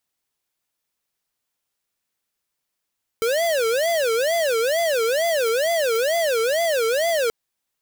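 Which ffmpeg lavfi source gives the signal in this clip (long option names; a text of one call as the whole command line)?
ffmpeg -f lavfi -i "aevalsrc='0.0944*(2*lt(mod((563.5*t-117.5/(2*PI*2.2)*sin(2*PI*2.2*t)),1),0.5)-1)':duration=4.08:sample_rate=44100" out.wav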